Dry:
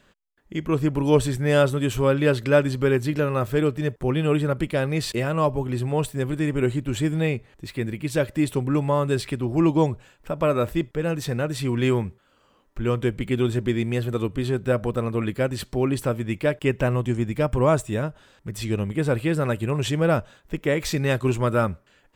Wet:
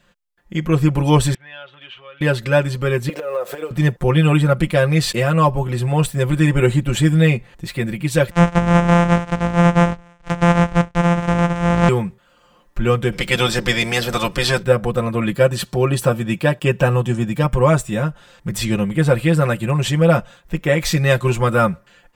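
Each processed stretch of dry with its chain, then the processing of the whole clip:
0:01.34–0:02.21: elliptic low-pass filter 3,200 Hz, stop band 80 dB + downward compressor 3 to 1, threshold −22 dBFS + first difference
0:03.09–0:03.71: one scale factor per block 7 bits + high-pass with resonance 490 Hz, resonance Q 3.7 + downward compressor 16 to 1, threshold −26 dBFS
0:08.31–0:11.89: samples sorted by size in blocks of 256 samples + high-frequency loss of the air 130 metres + one half of a high-frequency compander encoder only
0:13.11–0:14.62: ceiling on every frequency bin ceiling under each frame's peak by 17 dB + parametric band 5,200 Hz +12.5 dB 0.4 octaves
0:15.32–0:17.44: high-pass filter 67 Hz + notch filter 2,100 Hz, Q 7.6
whole clip: parametric band 350 Hz −10.5 dB 0.24 octaves; comb filter 5.7 ms, depth 84%; automatic gain control; level −1 dB

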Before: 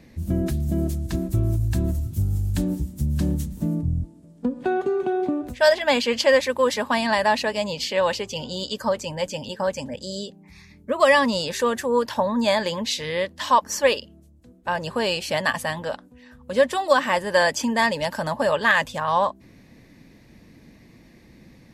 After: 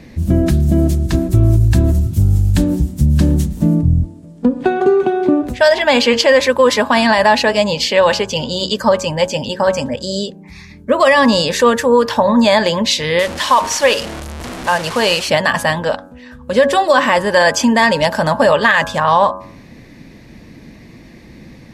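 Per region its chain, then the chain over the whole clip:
0:13.19–0:15.28: linear delta modulator 64 kbit/s, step −28.5 dBFS + low-shelf EQ 480 Hz −5.5 dB
whole clip: high-shelf EQ 10,000 Hz −8.5 dB; hum removal 92.83 Hz, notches 18; boost into a limiter +12.5 dB; level −1 dB

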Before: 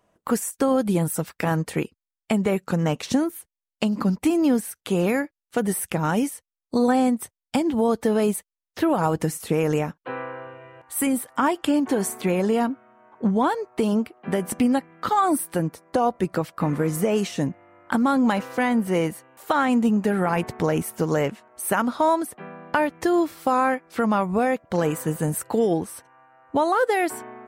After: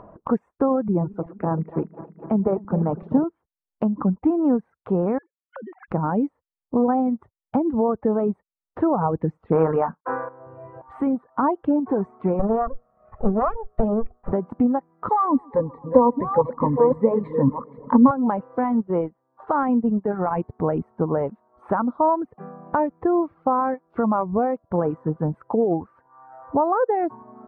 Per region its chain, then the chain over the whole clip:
0:00.88–0:03.24: feedback delay that plays each chunk backwards 126 ms, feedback 78%, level −10 dB + high-shelf EQ 2,300 Hz −8 dB + multiband upward and downward expander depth 40%
0:05.18–0:05.88: three sine waves on the formant tracks + spectral tilt +4.5 dB per octave + downward compressor 10 to 1, threshold −38 dBFS
0:09.52–0:10.29: variable-slope delta modulation 64 kbit/s + parametric band 1,400 Hz +11.5 dB 2.1 octaves + double-tracking delay 31 ms −9 dB
0:12.39–0:14.33: lower of the sound and its delayed copy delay 1.6 ms + low-shelf EQ 81 Hz +11.5 dB + mains-hum notches 60/120/180/240/300/360/420/480 Hz
0:15.09–0:18.11: delay that plays each chunk backwards 673 ms, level −6 dB + EQ curve with evenly spaced ripples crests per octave 1, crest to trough 17 dB + feedback echo with a low-pass in the loop 133 ms, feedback 74%, low-pass 3,400 Hz, level −16.5 dB
0:18.64–0:20.81: dynamic equaliser 3,800 Hz, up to +5 dB, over −41 dBFS, Q 0.87 + transient designer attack −2 dB, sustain −10 dB
whole clip: Chebyshev low-pass filter 1,100 Hz, order 3; reverb reduction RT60 0.9 s; upward compression, threshold −32 dBFS; level +2 dB

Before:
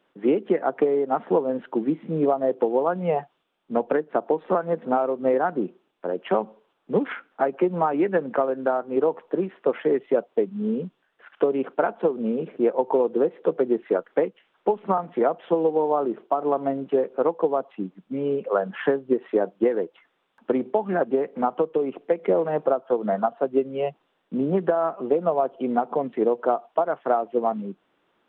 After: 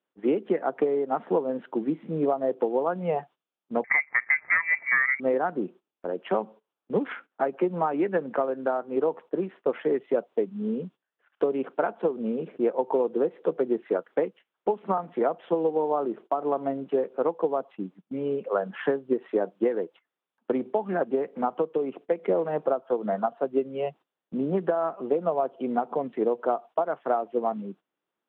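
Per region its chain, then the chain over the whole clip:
0:03.84–0:05.20: notch filter 1,000 Hz, Q 7.4 + leveller curve on the samples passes 1 + voice inversion scrambler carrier 2,500 Hz
whole clip: high-pass filter 89 Hz; noise gate −42 dBFS, range −15 dB; level −3.5 dB

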